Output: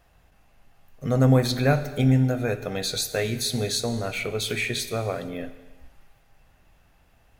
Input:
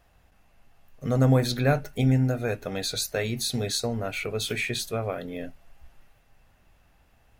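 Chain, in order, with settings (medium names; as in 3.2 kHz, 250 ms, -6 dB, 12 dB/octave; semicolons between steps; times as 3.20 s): gated-style reverb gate 490 ms falling, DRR 11 dB; trim +1.5 dB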